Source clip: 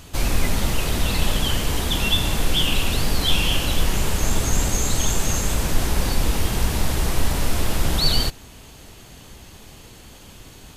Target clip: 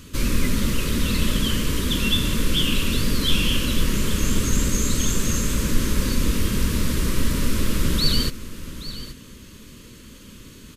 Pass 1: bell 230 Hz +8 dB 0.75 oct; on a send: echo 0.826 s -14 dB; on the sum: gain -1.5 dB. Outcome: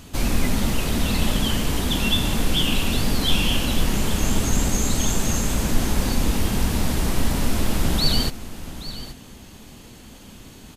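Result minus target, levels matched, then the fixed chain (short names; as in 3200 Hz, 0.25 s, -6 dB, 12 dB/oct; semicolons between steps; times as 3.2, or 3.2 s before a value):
1000 Hz band +4.5 dB
Butterworth band-stop 760 Hz, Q 1.7; bell 230 Hz +8 dB 0.75 oct; on a send: echo 0.826 s -14 dB; on the sum: gain -1.5 dB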